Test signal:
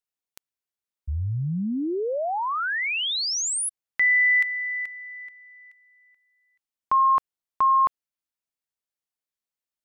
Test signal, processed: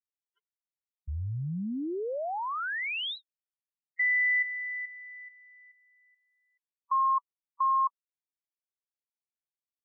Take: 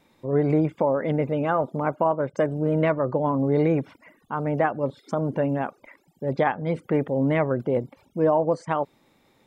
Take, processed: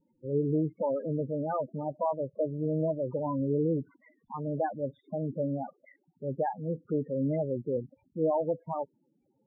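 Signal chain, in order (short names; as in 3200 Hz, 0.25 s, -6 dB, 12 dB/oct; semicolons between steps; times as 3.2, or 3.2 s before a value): downsampling 8000 Hz; loudest bins only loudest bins 8; gain -6.5 dB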